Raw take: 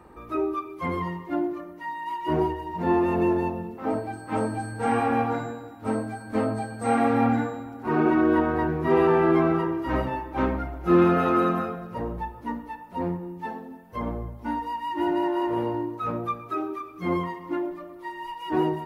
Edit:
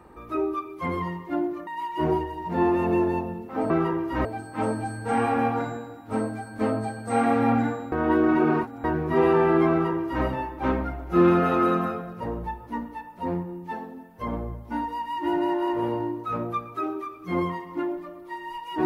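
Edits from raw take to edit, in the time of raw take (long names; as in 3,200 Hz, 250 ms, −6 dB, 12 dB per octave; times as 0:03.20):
0:01.67–0:01.96: remove
0:07.66–0:08.58: reverse
0:09.44–0:09.99: duplicate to 0:03.99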